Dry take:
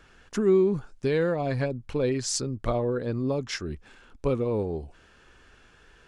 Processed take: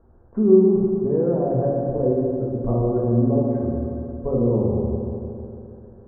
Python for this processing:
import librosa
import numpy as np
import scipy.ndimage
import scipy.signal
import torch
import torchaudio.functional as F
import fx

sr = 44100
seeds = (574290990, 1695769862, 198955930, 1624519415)

y = scipy.signal.sosfilt(scipy.signal.cheby2(4, 60, 2900.0, 'lowpass', fs=sr, output='sos'), x)
y = fx.peak_eq(y, sr, hz=75.0, db=8.0, octaves=0.22)
y = fx.rev_fdn(y, sr, rt60_s=3.0, lf_ratio=1.0, hf_ratio=0.65, size_ms=26.0, drr_db=-4.5)